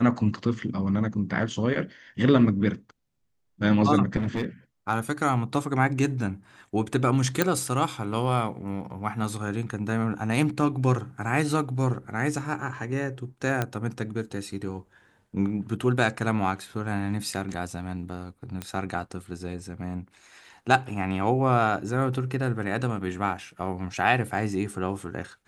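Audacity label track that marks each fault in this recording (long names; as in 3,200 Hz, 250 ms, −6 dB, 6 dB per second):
4.170000	4.440000	clipping −22.5 dBFS
7.420000	7.420000	click
13.620000	13.620000	click −12 dBFS
18.620000	18.620000	click −17 dBFS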